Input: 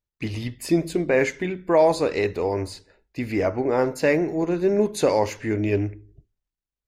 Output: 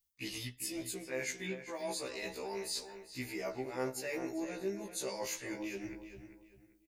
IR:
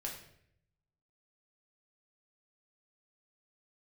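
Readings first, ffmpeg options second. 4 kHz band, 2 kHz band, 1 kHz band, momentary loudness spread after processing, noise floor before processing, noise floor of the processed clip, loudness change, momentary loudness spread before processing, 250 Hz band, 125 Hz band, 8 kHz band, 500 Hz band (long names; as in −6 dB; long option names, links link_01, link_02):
−5.5 dB, −12.5 dB, −18.0 dB, 6 LU, below −85 dBFS, −67 dBFS, −16.5 dB, 12 LU, −17.5 dB, −21.0 dB, −2.5 dB, −19.0 dB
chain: -filter_complex "[0:a]crystalizer=i=7:c=0,areverse,acompressor=threshold=-31dB:ratio=10,areverse,asplit=2[link_01][link_02];[link_02]adelay=394,lowpass=frequency=3700:poles=1,volume=-10dB,asplit=2[link_03][link_04];[link_04]adelay=394,lowpass=frequency=3700:poles=1,volume=0.29,asplit=2[link_05][link_06];[link_06]adelay=394,lowpass=frequency=3700:poles=1,volume=0.29[link_07];[link_01][link_03][link_05][link_07]amix=inputs=4:normalize=0,afftfilt=real='re*1.73*eq(mod(b,3),0)':imag='im*1.73*eq(mod(b,3),0)':win_size=2048:overlap=0.75,volume=-3.5dB"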